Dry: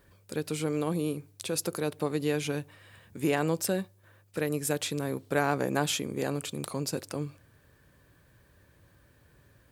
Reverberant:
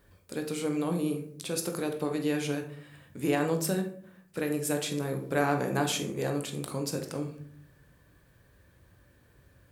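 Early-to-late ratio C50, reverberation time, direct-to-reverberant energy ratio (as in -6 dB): 8.5 dB, 0.55 s, 4.0 dB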